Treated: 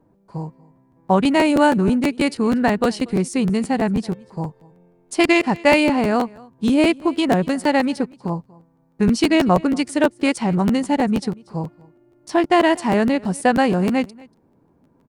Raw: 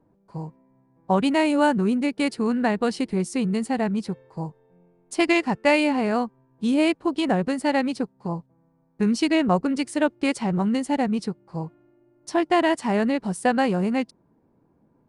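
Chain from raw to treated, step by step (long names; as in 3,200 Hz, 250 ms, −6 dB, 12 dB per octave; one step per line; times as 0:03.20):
single-tap delay 237 ms −23.5 dB
regular buffer underruns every 0.16 s, samples 512, repeat, from 0:00.75
level +4.5 dB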